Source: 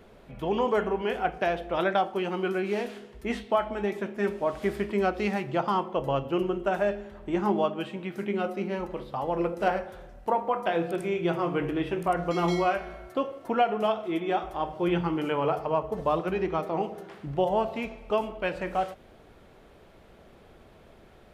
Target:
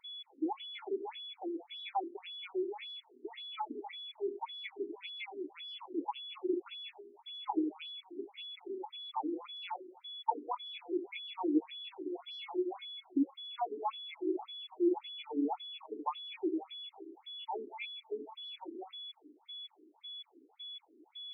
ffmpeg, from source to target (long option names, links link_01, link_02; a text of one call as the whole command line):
ffmpeg -i in.wav -filter_complex "[0:a]aeval=exprs='val(0)+0.0355*sin(2*PI*3400*n/s)':channel_layout=same,asplit=3[link_01][link_02][link_03];[link_01]bandpass=frequency=300:width_type=q:width=8,volume=0dB[link_04];[link_02]bandpass=frequency=870:width_type=q:width=8,volume=-6dB[link_05];[link_03]bandpass=frequency=2240:width_type=q:width=8,volume=-9dB[link_06];[link_04][link_05][link_06]amix=inputs=3:normalize=0,afftfilt=real='re*between(b*sr/1024,310*pow(4500/310,0.5+0.5*sin(2*PI*1.8*pts/sr))/1.41,310*pow(4500/310,0.5+0.5*sin(2*PI*1.8*pts/sr))*1.41)':imag='im*between(b*sr/1024,310*pow(4500/310,0.5+0.5*sin(2*PI*1.8*pts/sr))/1.41,310*pow(4500/310,0.5+0.5*sin(2*PI*1.8*pts/sr))*1.41)':win_size=1024:overlap=0.75,volume=8.5dB" out.wav